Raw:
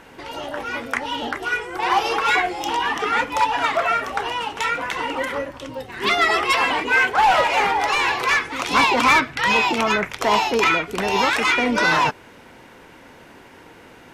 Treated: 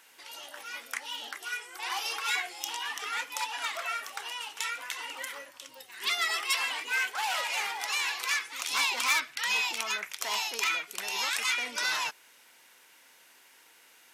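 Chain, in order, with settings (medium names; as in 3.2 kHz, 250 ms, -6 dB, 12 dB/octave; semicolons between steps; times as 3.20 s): differentiator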